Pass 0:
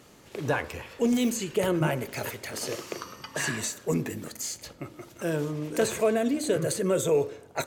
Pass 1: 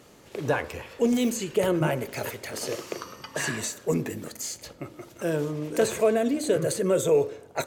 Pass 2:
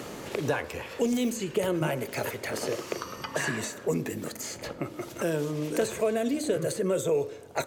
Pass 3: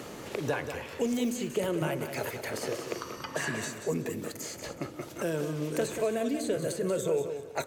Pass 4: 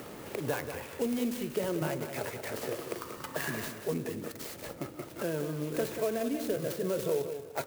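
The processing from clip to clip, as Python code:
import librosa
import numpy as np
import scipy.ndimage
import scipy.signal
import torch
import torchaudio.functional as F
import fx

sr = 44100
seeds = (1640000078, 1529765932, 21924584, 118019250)

y1 = fx.peak_eq(x, sr, hz=510.0, db=3.0, octaves=1.1)
y2 = fx.band_squash(y1, sr, depth_pct=70)
y2 = F.gain(torch.from_numpy(y2), -3.0).numpy()
y3 = fx.echo_feedback(y2, sr, ms=185, feedback_pct=26, wet_db=-9)
y3 = F.gain(torch.from_numpy(y3), -3.0).numpy()
y4 = fx.clock_jitter(y3, sr, seeds[0], jitter_ms=0.047)
y4 = F.gain(torch.from_numpy(y4), -2.0).numpy()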